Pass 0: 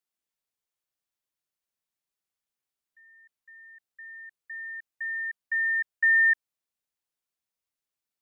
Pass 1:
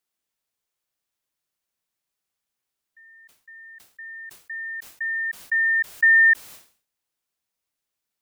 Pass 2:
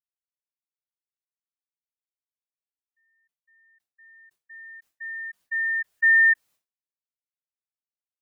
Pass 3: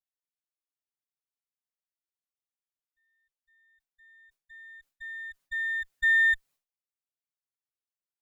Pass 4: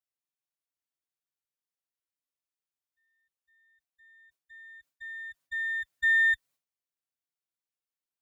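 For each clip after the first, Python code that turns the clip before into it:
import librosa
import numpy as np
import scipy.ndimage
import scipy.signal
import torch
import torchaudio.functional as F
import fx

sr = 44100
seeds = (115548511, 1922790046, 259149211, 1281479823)

y1 = fx.sustainer(x, sr, db_per_s=130.0)
y1 = y1 * 10.0 ** (5.5 / 20.0)
y2 = fx.spectral_expand(y1, sr, expansion=1.5)
y2 = y2 * 10.0 ** (-2.5 / 20.0)
y3 = fx.lower_of_two(y2, sr, delay_ms=7.2)
y3 = y3 * 10.0 ** (-5.0 / 20.0)
y4 = scipy.signal.sosfilt(scipy.signal.butter(2, 67.0, 'highpass', fs=sr, output='sos'), y3)
y4 = fx.notch_comb(y4, sr, f0_hz=210.0)
y4 = y4 * 10.0 ** (-1.0 / 20.0)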